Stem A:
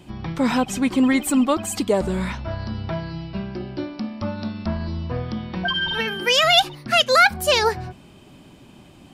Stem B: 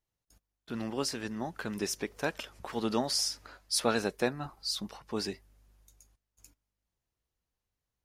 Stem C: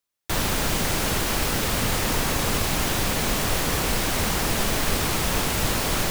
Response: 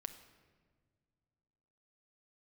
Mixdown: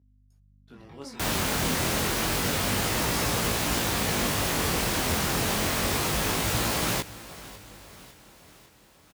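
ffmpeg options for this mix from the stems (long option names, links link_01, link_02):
-filter_complex "[0:a]acompressor=threshold=-22dB:ratio=6,adelay=650,volume=-16dB[link_01];[1:a]aeval=exprs='val(0)+0.00501*(sin(2*PI*50*n/s)+sin(2*PI*2*50*n/s)/2+sin(2*PI*3*50*n/s)/3+sin(2*PI*4*50*n/s)/4+sin(2*PI*5*50*n/s)/5)':channel_layout=same,volume=-8dB,asplit=2[link_02][link_03];[2:a]adelay=900,volume=1dB,asplit=2[link_04][link_05];[link_05]volume=-18dB[link_06];[link_03]apad=whole_len=431334[link_07];[link_01][link_07]sidechaingate=range=-33dB:threshold=-50dB:ratio=16:detection=peak[link_08];[link_06]aecho=0:1:552|1104|1656|2208|2760|3312|3864|4416|4968:1|0.57|0.325|0.185|0.106|0.0602|0.0343|0.0195|0.0111[link_09];[link_08][link_02][link_04][link_09]amix=inputs=4:normalize=0,highpass=56,flanger=delay=17:depth=6.9:speed=0.29"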